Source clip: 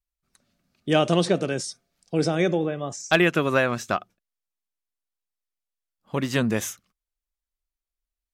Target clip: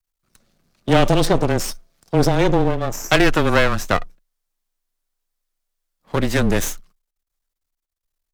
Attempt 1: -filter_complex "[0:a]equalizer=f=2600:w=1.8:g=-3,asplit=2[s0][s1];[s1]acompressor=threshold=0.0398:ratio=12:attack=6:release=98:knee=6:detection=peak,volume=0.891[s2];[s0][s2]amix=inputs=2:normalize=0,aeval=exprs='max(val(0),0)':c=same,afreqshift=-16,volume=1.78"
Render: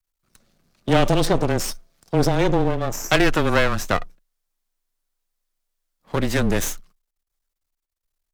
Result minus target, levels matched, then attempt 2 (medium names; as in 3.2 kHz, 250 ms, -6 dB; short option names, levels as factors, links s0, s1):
compression: peak gain reduction +10 dB
-filter_complex "[0:a]equalizer=f=2600:w=1.8:g=-3,asplit=2[s0][s1];[s1]acompressor=threshold=0.141:ratio=12:attack=6:release=98:knee=6:detection=peak,volume=0.891[s2];[s0][s2]amix=inputs=2:normalize=0,aeval=exprs='max(val(0),0)':c=same,afreqshift=-16,volume=1.78"